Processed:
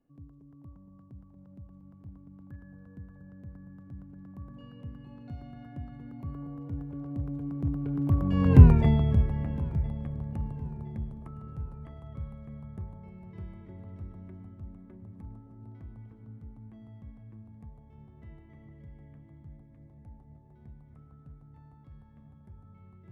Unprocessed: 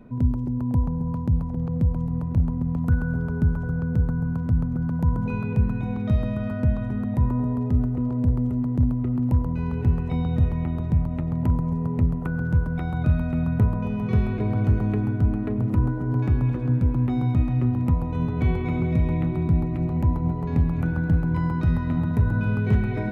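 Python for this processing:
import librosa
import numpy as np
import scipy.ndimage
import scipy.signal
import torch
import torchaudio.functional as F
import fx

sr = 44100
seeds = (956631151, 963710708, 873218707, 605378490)

p1 = fx.doppler_pass(x, sr, speed_mps=45, closest_m=6.4, pass_at_s=8.64)
p2 = p1 + fx.echo_feedback(p1, sr, ms=1013, feedback_pct=44, wet_db=-21.0, dry=0)
y = p2 * 10.0 ** (8.5 / 20.0)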